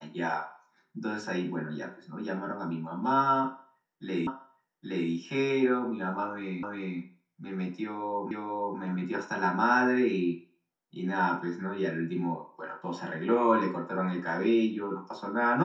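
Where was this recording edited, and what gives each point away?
4.27 repeat of the last 0.82 s
6.63 repeat of the last 0.36 s
8.31 repeat of the last 0.48 s

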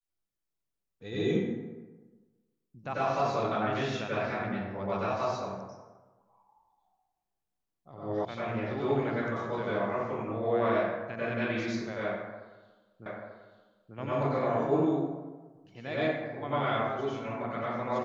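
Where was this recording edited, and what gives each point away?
8.25 sound cut off
13.06 repeat of the last 0.89 s

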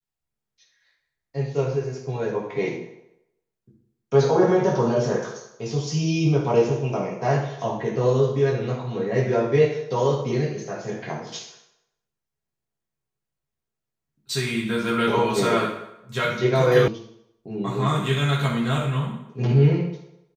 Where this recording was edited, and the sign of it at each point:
16.88 sound cut off

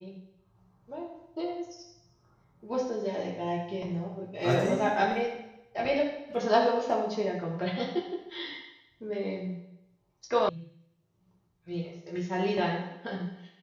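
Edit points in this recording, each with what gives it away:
10.49 sound cut off

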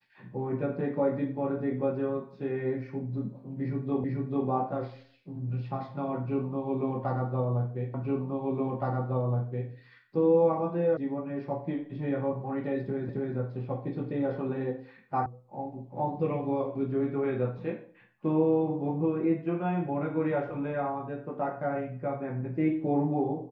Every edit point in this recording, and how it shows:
4.04 repeat of the last 0.44 s
7.94 repeat of the last 1.77 s
10.97 sound cut off
13.09 repeat of the last 0.27 s
15.26 sound cut off

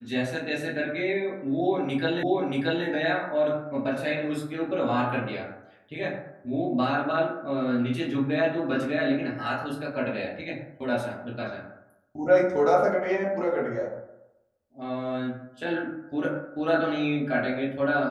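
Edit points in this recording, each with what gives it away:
2.23 repeat of the last 0.63 s

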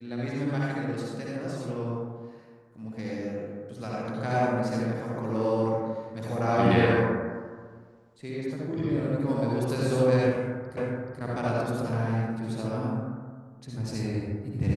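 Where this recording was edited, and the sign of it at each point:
10.77 repeat of the last 0.43 s

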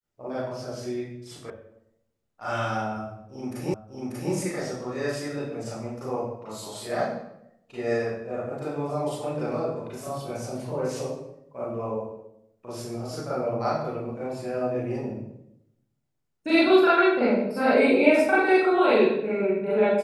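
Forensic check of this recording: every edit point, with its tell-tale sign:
1.5 sound cut off
3.74 repeat of the last 0.59 s

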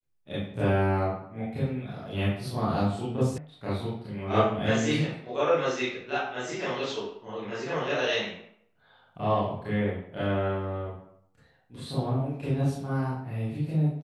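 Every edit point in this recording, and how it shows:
3.38 sound cut off

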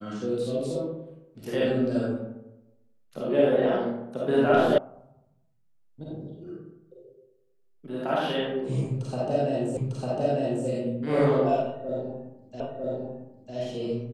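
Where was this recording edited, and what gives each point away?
4.78 sound cut off
9.77 repeat of the last 0.9 s
12.6 repeat of the last 0.95 s

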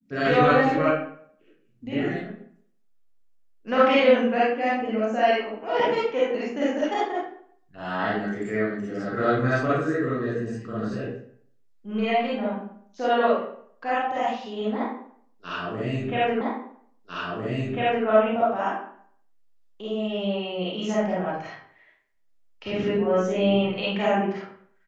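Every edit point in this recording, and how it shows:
16.41 repeat of the last 1.65 s

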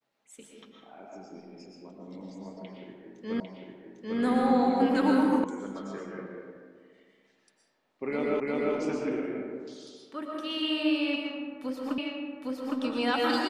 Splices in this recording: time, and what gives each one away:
3.4 repeat of the last 0.8 s
5.44 sound cut off
8.4 repeat of the last 0.35 s
11.98 repeat of the last 0.81 s

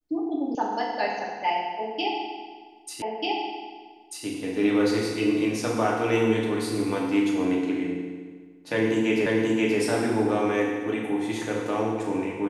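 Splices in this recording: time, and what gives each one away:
0.55 sound cut off
3.02 repeat of the last 1.24 s
9.26 repeat of the last 0.53 s

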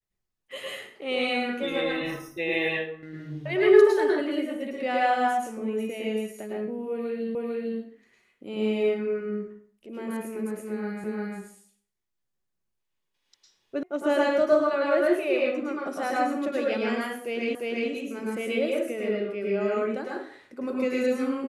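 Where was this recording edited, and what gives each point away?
7.35 repeat of the last 0.45 s
11.04 repeat of the last 0.35 s
13.83 sound cut off
17.55 repeat of the last 0.35 s

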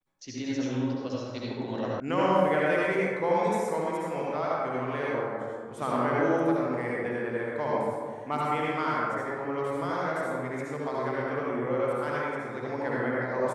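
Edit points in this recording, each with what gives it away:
2 sound cut off

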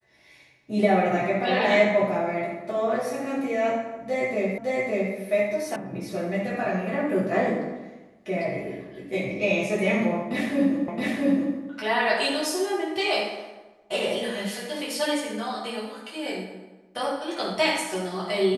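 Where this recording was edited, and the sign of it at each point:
4.58 repeat of the last 0.56 s
5.76 sound cut off
10.88 repeat of the last 0.67 s

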